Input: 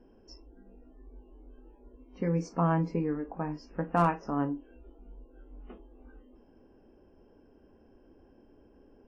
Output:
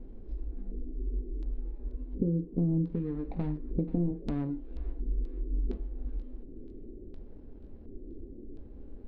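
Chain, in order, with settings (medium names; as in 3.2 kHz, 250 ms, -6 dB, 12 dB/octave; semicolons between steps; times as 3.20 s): median filter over 41 samples; compression 6:1, threshold -38 dBFS, peak gain reduction 13.5 dB; tilt EQ -4 dB/octave; LFO low-pass square 0.7 Hz 380–4000 Hz; thinning echo 483 ms, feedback 65%, high-pass 1.1 kHz, level -13.5 dB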